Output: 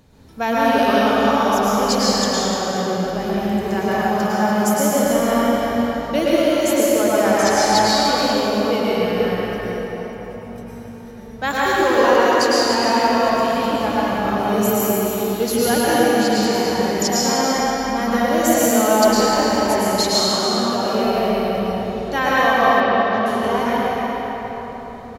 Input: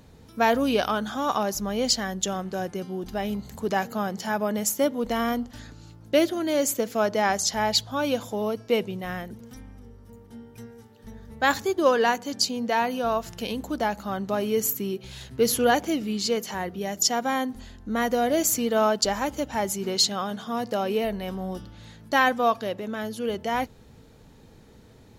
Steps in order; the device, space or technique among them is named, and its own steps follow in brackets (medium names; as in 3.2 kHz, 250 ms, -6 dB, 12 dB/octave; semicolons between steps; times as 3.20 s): cave (delay 297 ms -8.5 dB; reverberation RT60 4.7 s, pre-delay 99 ms, DRR -9 dB); 22.80–23.26 s: low-pass 5 kHz 24 dB/octave; trim -1.5 dB